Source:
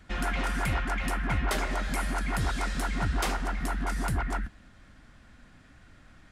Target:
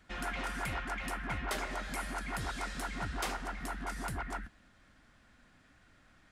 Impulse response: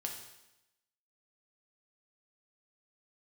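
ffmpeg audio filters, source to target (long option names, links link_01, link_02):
-af "lowshelf=frequency=220:gain=-7,volume=-5.5dB"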